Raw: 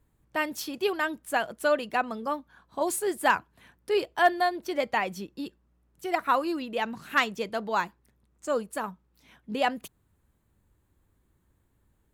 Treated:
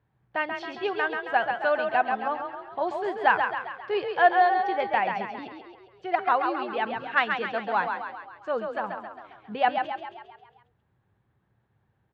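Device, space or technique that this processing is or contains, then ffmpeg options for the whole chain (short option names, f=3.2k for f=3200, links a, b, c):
frequency-shifting delay pedal into a guitar cabinet: -filter_complex "[0:a]asplit=8[a][b][c][d][e][f][g][h];[b]adelay=135,afreqshift=31,volume=-5.5dB[i];[c]adelay=270,afreqshift=62,volume=-10.9dB[j];[d]adelay=405,afreqshift=93,volume=-16.2dB[k];[e]adelay=540,afreqshift=124,volume=-21.6dB[l];[f]adelay=675,afreqshift=155,volume=-26.9dB[m];[g]adelay=810,afreqshift=186,volume=-32.3dB[n];[h]adelay=945,afreqshift=217,volume=-37.6dB[o];[a][i][j][k][l][m][n][o]amix=inputs=8:normalize=0,highpass=96,equalizer=f=120:t=q:w=4:g=8,equalizer=f=280:t=q:w=4:g=-6,equalizer=f=780:t=q:w=4:g=8,equalizer=f=1.6k:t=q:w=4:g=5,lowpass=f=3.6k:w=0.5412,lowpass=f=3.6k:w=1.3066,volume=-2dB"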